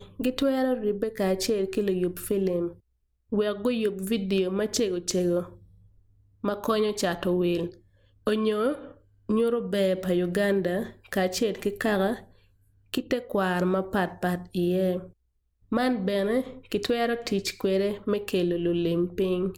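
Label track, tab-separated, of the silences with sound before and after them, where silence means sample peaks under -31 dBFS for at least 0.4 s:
2.690000	3.320000	silence
5.430000	6.440000	silence
7.670000	8.270000	silence
8.750000	9.290000	silence
12.160000	12.940000	silence
14.990000	15.720000	silence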